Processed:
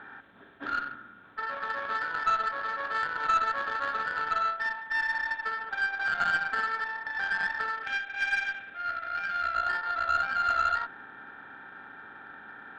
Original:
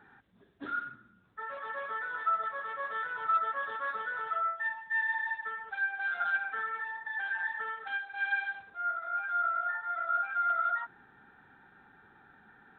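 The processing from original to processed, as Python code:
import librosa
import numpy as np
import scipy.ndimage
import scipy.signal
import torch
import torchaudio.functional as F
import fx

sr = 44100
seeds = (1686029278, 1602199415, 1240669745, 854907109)

y = fx.bin_compress(x, sr, power=0.6)
y = fx.graphic_eq_15(y, sr, hz=(400, 1000, 2500), db=(-4, -10, 8), at=(7.83, 9.55))
y = fx.cheby_harmonics(y, sr, harmonics=(2, 7), levels_db=(-16, -26), full_scale_db=-16.0)
y = y * 10.0 ** (1.5 / 20.0)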